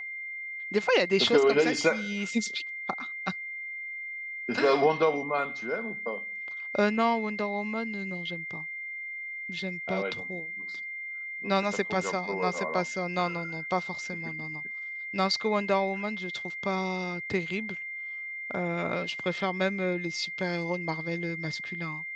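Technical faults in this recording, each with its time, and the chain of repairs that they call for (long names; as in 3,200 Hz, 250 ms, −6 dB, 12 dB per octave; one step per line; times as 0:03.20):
whistle 2,100 Hz −35 dBFS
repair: notch filter 2,100 Hz, Q 30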